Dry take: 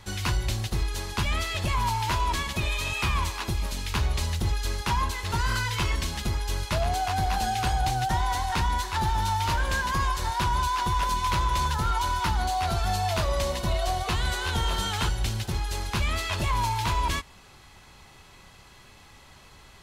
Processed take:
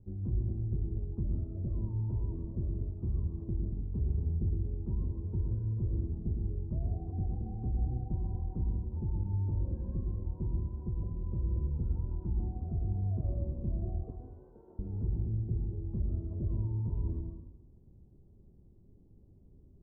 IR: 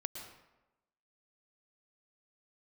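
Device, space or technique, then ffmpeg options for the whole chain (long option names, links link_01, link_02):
next room: -filter_complex "[0:a]asettb=1/sr,asplit=3[link_01][link_02][link_03];[link_01]atrim=end=14.104[link_04];[link_02]atrim=start=14.1:end=14.79,asetpts=PTS-STARTPTS,afade=type=in:duration=0.004:curve=qsin,afade=type=out:start_time=0.686:duration=0.004:curve=qsin,highpass=630[link_05];[link_03]atrim=start=14.786[link_06];[link_04][link_05]acrossfade=duration=0.004:curve1=hsin:curve2=qsin[link_07];[link_07][link_06]acrossfade=duration=0.004:curve1=qsin:curve2=hsin,lowpass=frequency=370:width=0.5412,lowpass=frequency=370:width=1.3066[link_08];[1:a]atrim=start_sample=2205[link_09];[link_08][link_09]afir=irnorm=-1:irlink=0,volume=-3dB"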